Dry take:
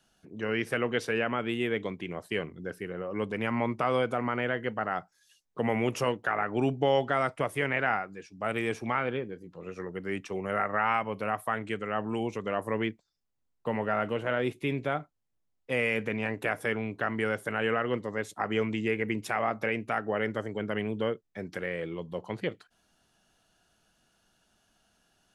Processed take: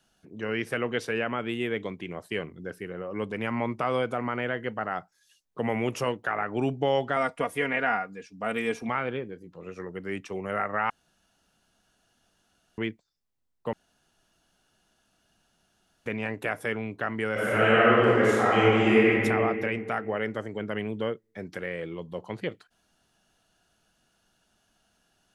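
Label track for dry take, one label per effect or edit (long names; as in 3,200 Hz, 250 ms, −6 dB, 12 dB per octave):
7.160000	8.890000	comb filter 4.2 ms, depth 62%
10.900000	12.780000	fill with room tone
13.730000	16.060000	fill with room tone
17.320000	19.100000	thrown reverb, RT60 2.3 s, DRR −10 dB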